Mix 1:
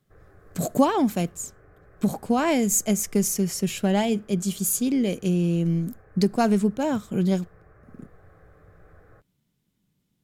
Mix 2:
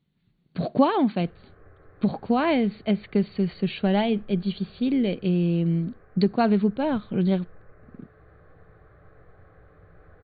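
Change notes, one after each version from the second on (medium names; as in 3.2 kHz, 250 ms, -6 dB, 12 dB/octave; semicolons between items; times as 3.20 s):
background: entry +1.15 s; master: add brick-wall FIR low-pass 4.6 kHz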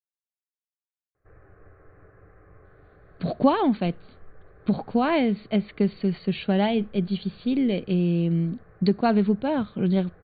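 speech: entry +2.65 s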